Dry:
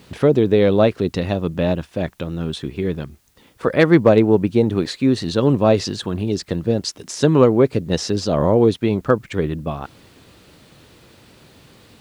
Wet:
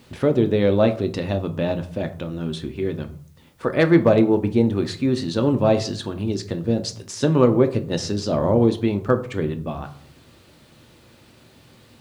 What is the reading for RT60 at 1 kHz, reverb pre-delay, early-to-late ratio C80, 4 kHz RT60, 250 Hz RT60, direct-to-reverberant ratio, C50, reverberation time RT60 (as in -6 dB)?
0.50 s, 3 ms, 18.0 dB, 0.30 s, 0.75 s, 7.0 dB, 14.5 dB, 0.50 s